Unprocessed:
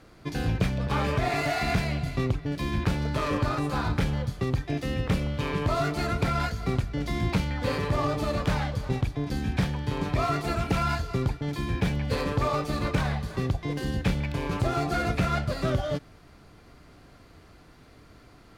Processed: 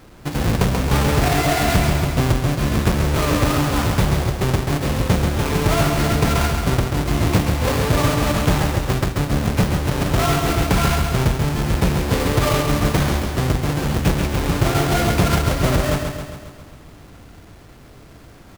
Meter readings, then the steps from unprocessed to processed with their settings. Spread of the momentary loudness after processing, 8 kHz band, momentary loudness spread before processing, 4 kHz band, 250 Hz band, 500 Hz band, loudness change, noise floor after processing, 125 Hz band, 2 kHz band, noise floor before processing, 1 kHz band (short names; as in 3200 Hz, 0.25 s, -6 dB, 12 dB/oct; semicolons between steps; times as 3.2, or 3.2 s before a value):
4 LU, +17.0 dB, 3 LU, +11.0 dB, +9.0 dB, +8.5 dB, +9.0 dB, -43 dBFS, +9.0 dB, +8.5 dB, -53 dBFS, +8.0 dB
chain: half-waves squared off; feedback echo 0.135 s, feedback 58%, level -5.5 dB; gain +3 dB